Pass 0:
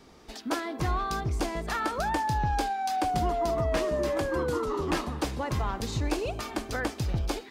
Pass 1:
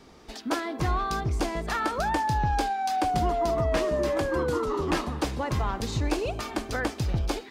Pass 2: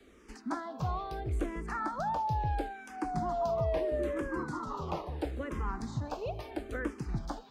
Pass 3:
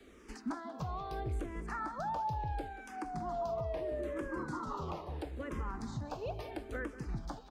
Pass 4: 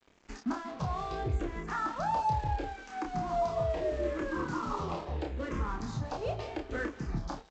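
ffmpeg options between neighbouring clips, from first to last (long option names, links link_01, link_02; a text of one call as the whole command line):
ffmpeg -i in.wav -af "highshelf=frequency=9800:gain=-4,volume=2dB" out.wav
ffmpeg -i in.wav -filter_complex "[0:a]acrossover=split=130|480|1700[link_01][link_02][link_03][link_04];[link_04]acompressor=threshold=-47dB:ratio=6[link_05];[link_01][link_02][link_03][link_05]amix=inputs=4:normalize=0,asplit=2[link_06][link_07];[link_07]afreqshift=-0.75[link_08];[link_06][link_08]amix=inputs=2:normalize=1,volume=-4dB" out.wav
ffmpeg -i in.wav -filter_complex "[0:a]alimiter=level_in=6.5dB:limit=-24dB:level=0:latency=1:release=485,volume=-6.5dB,asplit=2[link_01][link_02];[link_02]adelay=186.6,volume=-14dB,highshelf=frequency=4000:gain=-4.2[link_03];[link_01][link_03]amix=inputs=2:normalize=0,volume=1dB" out.wav
ffmpeg -i in.wav -filter_complex "[0:a]aresample=16000,aeval=exprs='sgn(val(0))*max(abs(val(0))-0.002,0)':channel_layout=same,aresample=44100,asplit=2[link_01][link_02];[link_02]adelay=29,volume=-4dB[link_03];[link_01][link_03]amix=inputs=2:normalize=0,volume=5dB" out.wav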